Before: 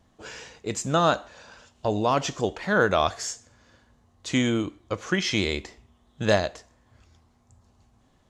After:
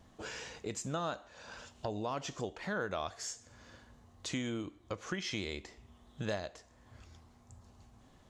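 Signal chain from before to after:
downward compressor 2.5 to 1, threshold −44 dBFS, peak gain reduction 18.5 dB
level +1.5 dB

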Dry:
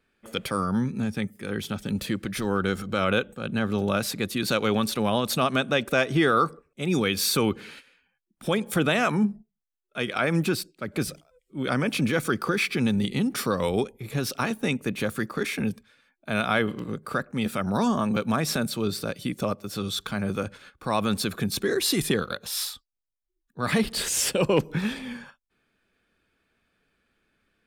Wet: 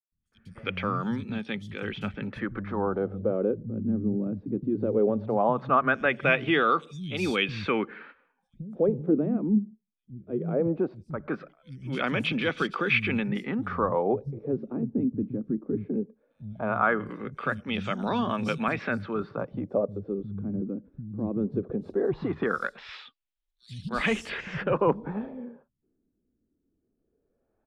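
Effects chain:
three-band delay without the direct sound highs, lows, mids 120/320 ms, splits 170/5,300 Hz
auto-filter low-pass sine 0.18 Hz 270–3,400 Hz
dynamic equaliser 4,300 Hz, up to −5 dB, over −48 dBFS, Q 2.1
level −2.5 dB

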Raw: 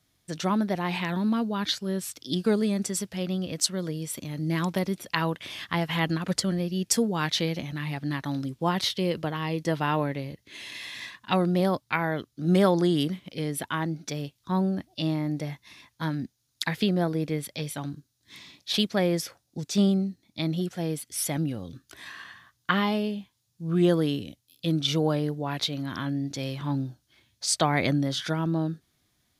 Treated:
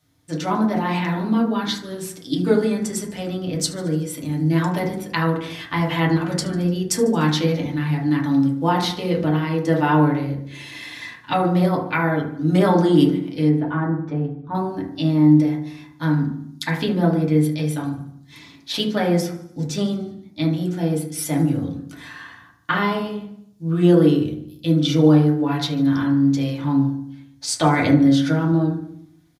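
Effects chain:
0:13.49–0:14.55: low-pass filter 1,300 Hz 12 dB per octave
repeating echo 74 ms, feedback 56%, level −18.5 dB
feedback delay network reverb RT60 0.64 s, low-frequency decay 1.5×, high-frequency decay 0.25×, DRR −3.5 dB

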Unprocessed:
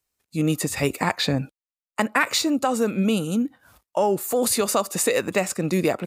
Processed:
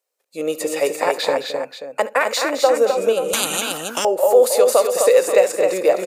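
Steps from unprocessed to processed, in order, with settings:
high-pass with resonance 520 Hz, resonance Q 4.7
multi-tap delay 71/216/258/533 ms −18.5/−11.5/−5/−12 dB
0:03.33–0:04.05: every bin compressed towards the loudest bin 10 to 1
level −1 dB

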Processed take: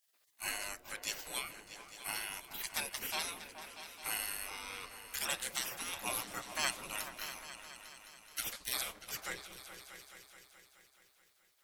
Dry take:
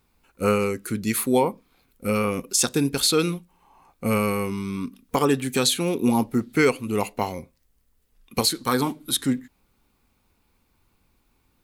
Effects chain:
gate on every frequency bin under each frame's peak −25 dB weak
echo whose low-pass opens from repeat to repeat 213 ms, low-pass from 400 Hz, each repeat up 2 octaves, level −6 dB

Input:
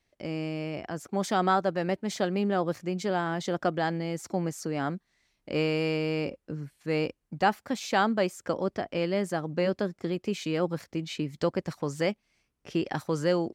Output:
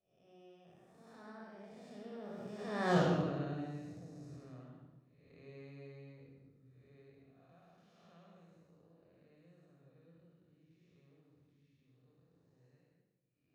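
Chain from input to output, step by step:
spectrum smeared in time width 306 ms
source passing by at 0:02.94, 46 m/s, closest 3 metres
rectangular room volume 3,800 cubic metres, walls furnished, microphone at 6 metres
level +1 dB

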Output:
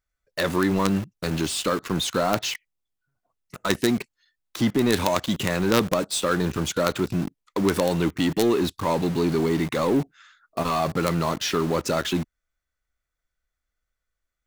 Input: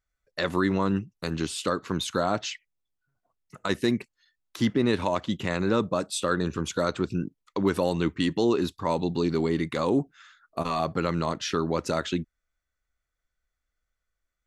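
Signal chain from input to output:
0:04.92–0:05.47: high-shelf EQ 4,900 Hz +12 dB
in parallel at −6 dB: log-companded quantiser 2 bits

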